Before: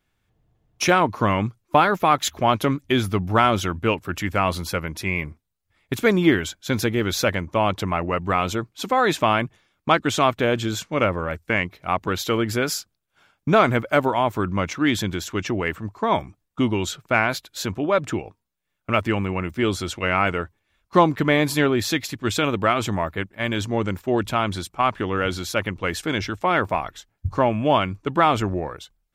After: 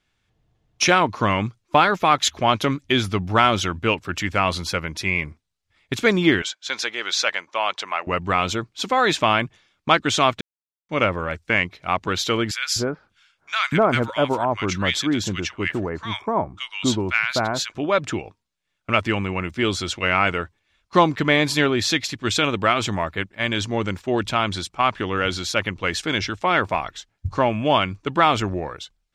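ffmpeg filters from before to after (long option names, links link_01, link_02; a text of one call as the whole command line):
ffmpeg -i in.wav -filter_complex "[0:a]asettb=1/sr,asplit=3[link_01][link_02][link_03];[link_01]atrim=end=6.424[link_04];[link_02]atrim=start=6.42:end=8.07,asetpts=PTS-STARTPTS,afade=type=in:duration=0.004:curve=qsin,afade=type=out:start_time=1.646:duration=0.004:curve=qsin,highpass=750,lowpass=7800[link_05];[link_03]atrim=start=8.066[link_06];[link_04][link_05]acrossfade=duration=0.004:curve1=hsin:curve2=qsin[link_07];[link_07][link_06]acrossfade=duration=0.004:curve1=qsin:curve2=hsin,asettb=1/sr,asplit=3[link_08][link_09][link_10];[link_08]atrim=end=12.514[link_11];[link_09]atrim=start=12.51:end=17.75,asetpts=PTS-STARTPTS,afade=type=in:duration=0.004:curve=qsin,afade=type=out:start_time=5.236:duration=0.004:curve=qsin,acrossover=split=1300[link_12][link_13];[link_12]adelay=250[link_14];[link_14][link_13]amix=inputs=2:normalize=0,atrim=end_sample=231084[link_15];[link_10]atrim=start=17.746[link_16];[link_11][link_15]acrossfade=duration=0.004:curve1=hsin:curve2=qsin[link_17];[link_17][link_16]acrossfade=duration=0.004:curve1=qsin:curve2=hsin,asplit=3[link_18][link_19][link_20];[link_18]atrim=end=10.41,asetpts=PTS-STARTPTS,afade=type=out:start_time=10.406:duration=0.004:curve=hsin[link_21];[link_19]atrim=start=10.41:end=10.89,asetpts=PTS-STARTPTS,volume=0[link_22];[link_20]atrim=start=10.89,asetpts=PTS-STARTPTS,afade=type=in:duration=0.004:curve=hsin[link_23];[link_21][link_22][link_23]concat=n=3:v=0:a=1,lowpass=6000,highshelf=frequency=2300:gain=9.5,volume=-1dB" out.wav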